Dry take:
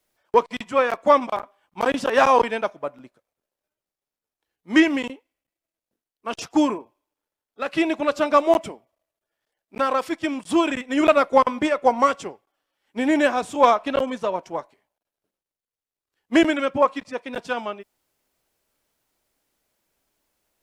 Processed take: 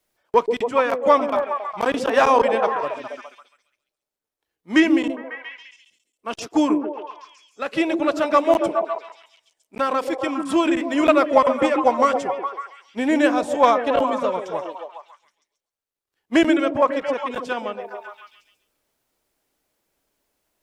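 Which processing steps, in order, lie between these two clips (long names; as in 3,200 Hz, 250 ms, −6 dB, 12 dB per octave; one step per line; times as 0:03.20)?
echo through a band-pass that steps 137 ms, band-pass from 350 Hz, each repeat 0.7 octaves, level −2 dB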